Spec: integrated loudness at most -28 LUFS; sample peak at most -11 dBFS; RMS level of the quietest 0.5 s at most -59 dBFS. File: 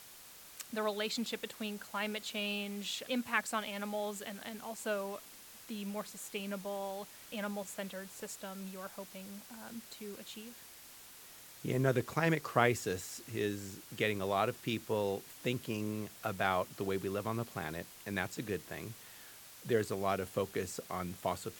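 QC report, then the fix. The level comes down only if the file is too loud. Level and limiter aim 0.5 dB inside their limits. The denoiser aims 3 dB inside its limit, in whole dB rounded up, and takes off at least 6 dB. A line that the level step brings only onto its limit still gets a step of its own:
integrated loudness -37.5 LUFS: OK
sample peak -11.5 dBFS: OK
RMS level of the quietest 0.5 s -54 dBFS: fail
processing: denoiser 8 dB, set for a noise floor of -54 dBFS

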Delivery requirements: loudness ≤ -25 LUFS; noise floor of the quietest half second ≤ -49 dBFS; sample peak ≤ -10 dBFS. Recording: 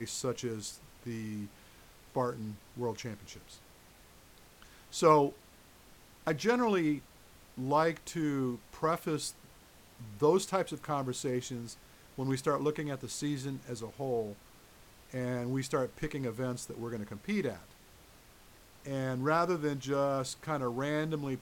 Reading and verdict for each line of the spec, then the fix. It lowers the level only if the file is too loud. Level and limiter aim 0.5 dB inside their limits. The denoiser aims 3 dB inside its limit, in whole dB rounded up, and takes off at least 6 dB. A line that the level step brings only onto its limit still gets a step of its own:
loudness -34.0 LUFS: OK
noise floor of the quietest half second -58 dBFS: OK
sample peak -11.5 dBFS: OK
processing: none

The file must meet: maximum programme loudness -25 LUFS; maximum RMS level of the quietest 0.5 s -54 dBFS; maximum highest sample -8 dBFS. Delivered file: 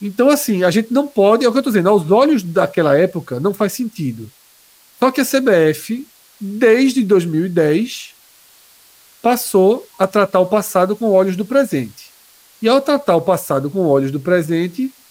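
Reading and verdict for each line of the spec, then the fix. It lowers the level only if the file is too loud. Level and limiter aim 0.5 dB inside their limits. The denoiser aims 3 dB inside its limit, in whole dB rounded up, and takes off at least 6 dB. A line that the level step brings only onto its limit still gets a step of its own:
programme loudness -15.5 LUFS: fail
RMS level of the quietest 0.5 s -50 dBFS: fail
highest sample -2.5 dBFS: fail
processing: gain -10 dB

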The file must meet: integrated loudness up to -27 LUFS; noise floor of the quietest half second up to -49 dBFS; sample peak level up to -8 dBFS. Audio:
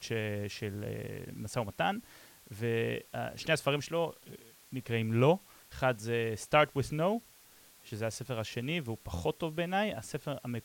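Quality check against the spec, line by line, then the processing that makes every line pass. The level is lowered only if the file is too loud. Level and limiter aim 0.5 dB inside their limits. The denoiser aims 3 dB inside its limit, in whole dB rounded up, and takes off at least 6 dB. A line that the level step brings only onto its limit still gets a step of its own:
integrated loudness -33.5 LUFS: OK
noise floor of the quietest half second -59 dBFS: OK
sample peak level -12.5 dBFS: OK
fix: none

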